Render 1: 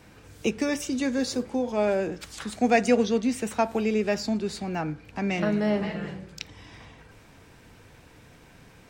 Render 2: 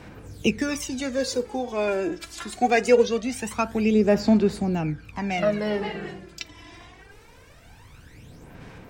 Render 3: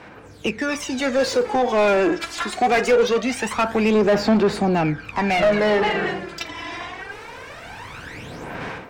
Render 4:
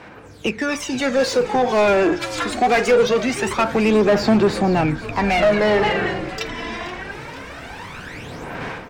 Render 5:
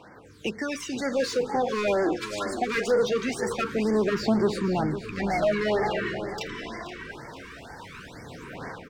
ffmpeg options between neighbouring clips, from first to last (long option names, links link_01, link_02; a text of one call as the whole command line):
ffmpeg -i in.wav -af "aphaser=in_gain=1:out_gain=1:delay=3:decay=0.65:speed=0.23:type=sinusoidal" out.wav
ffmpeg -i in.wav -filter_complex "[0:a]equalizer=frequency=320:width_type=o:width=2.9:gain=-3,dynaudnorm=framelen=620:gausssize=3:maxgain=13.5dB,asplit=2[link_01][link_02];[link_02]highpass=frequency=720:poles=1,volume=24dB,asoftclip=type=tanh:threshold=-1dB[link_03];[link_01][link_03]amix=inputs=2:normalize=0,lowpass=frequency=1400:poles=1,volume=-6dB,volume=-7.5dB" out.wav
ffmpeg -i in.wav -filter_complex "[0:a]asplit=8[link_01][link_02][link_03][link_04][link_05][link_06][link_07][link_08];[link_02]adelay=477,afreqshift=-88,volume=-15dB[link_09];[link_03]adelay=954,afreqshift=-176,volume=-18.9dB[link_10];[link_04]adelay=1431,afreqshift=-264,volume=-22.8dB[link_11];[link_05]adelay=1908,afreqshift=-352,volume=-26.6dB[link_12];[link_06]adelay=2385,afreqshift=-440,volume=-30.5dB[link_13];[link_07]adelay=2862,afreqshift=-528,volume=-34.4dB[link_14];[link_08]adelay=3339,afreqshift=-616,volume=-38.3dB[link_15];[link_01][link_09][link_10][link_11][link_12][link_13][link_14][link_15]amix=inputs=8:normalize=0,volume=1.5dB" out.wav
ffmpeg -i in.wav -filter_complex "[0:a]lowshelf=frequency=66:gain=-5.5,asplit=2[link_01][link_02];[link_02]adelay=507.3,volume=-11dB,highshelf=frequency=4000:gain=-11.4[link_03];[link_01][link_03]amix=inputs=2:normalize=0,afftfilt=real='re*(1-between(b*sr/1024,640*pow(3200/640,0.5+0.5*sin(2*PI*2.1*pts/sr))/1.41,640*pow(3200/640,0.5+0.5*sin(2*PI*2.1*pts/sr))*1.41))':imag='im*(1-between(b*sr/1024,640*pow(3200/640,0.5+0.5*sin(2*PI*2.1*pts/sr))/1.41,640*pow(3200/640,0.5+0.5*sin(2*PI*2.1*pts/sr))*1.41))':win_size=1024:overlap=0.75,volume=-7.5dB" out.wav